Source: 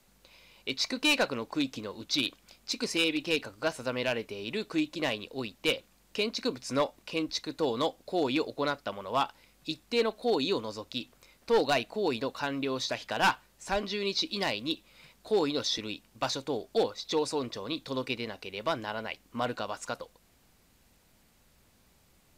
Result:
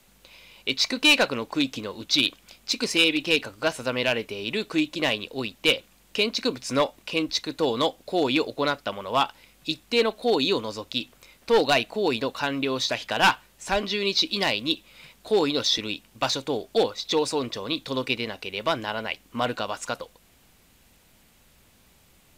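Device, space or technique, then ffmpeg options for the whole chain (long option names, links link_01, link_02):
exciter from parts: -filter_complex "[0:a]asplit=2[link_01][link_02];[link_02]highpass=frequency=4100:width=0.5412,highpass=frequency=4100:width=1.3066,asoftclip=type=tanh:threshold=-36dB,volume=-9.5dB[link_03];[link_01][link_03]amix=inputs=2:normalize=0,equalizer=frequency=3300:width=1.1:gain=4.5,volume=5dB"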